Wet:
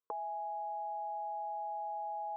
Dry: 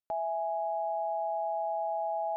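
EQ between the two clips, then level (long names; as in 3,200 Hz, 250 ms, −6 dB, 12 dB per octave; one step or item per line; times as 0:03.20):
pair of resonant band-passes 700 Hz, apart 1.2 octaves
+11.5 dB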